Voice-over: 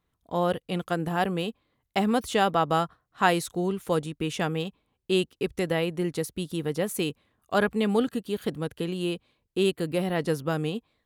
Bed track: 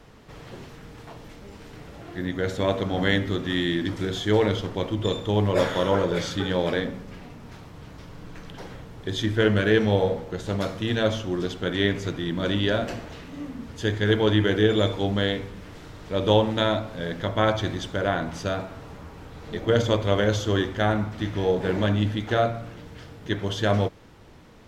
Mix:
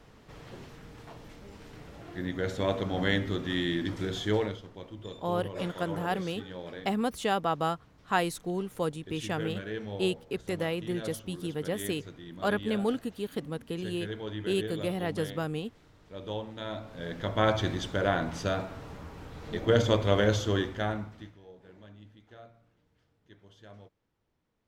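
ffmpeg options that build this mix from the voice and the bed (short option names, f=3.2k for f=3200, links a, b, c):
-filter_complex "[0:a]adelay=4900,volume=-5dB[a];[1:a]volume=9.5dB,afade=t=out:st=4.27:d=0.32:silence=0.251189,afade=t=in:st=16.6:d=0.98:silence=0.188365,afade=t=out:st=20.3:d=1.08:silence=0.0473151[b];[a][b]amix=inputs=2:normalize=0"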